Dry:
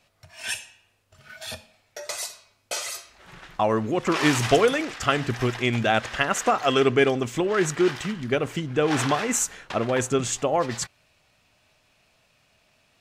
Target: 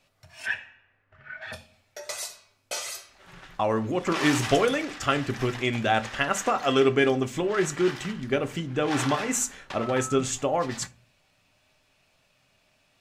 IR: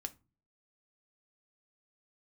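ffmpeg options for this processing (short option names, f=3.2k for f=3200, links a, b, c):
-filter_complex "[0:a]asplit=3[a][b][c];[a]afade=t=out:st=0.45:d=0.02[d];[b]lowpass=f=1.8k:t=q:w=3.3,afade=t=in:st=0.45:d=0.02,afade=t=out:st=1.52:d=0.02[e];[c]afade=t=in:st=1.52:d=0.02[f];[d][e][f]amix=inputs=3:normalize=0,asettb=1/sr,asplit=3[g][h][i];[g]atrim=end=9.804[j];[h]atrim=start=9.8:end=10.2,asetpts=PTS-STARTPTS,afade=t=in:d=0.004:c=qsin,afade=t=out:st=0.396:d=0.004:c=qsin,aeval=exprs='val(0)+0.0398*sin(2*PI*1300*n/s)':c=same[k];[i]atrim=start=10.196[l];[j][k]acrossfade=d=0.004:c1=hsin:c2=qsin[m];[m][l]acrossfade=d=0.004:c1=qsin:c2=hsin[n];[1:a]atrim=start_sample=2205[o];[n][o]afir=irnorm=-1:irlink=0"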